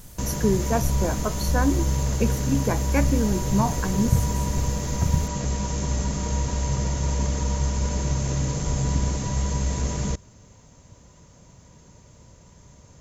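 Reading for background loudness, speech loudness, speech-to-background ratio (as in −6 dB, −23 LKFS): −26.0 LKFS, −26.5 LKFS, −0.5 dB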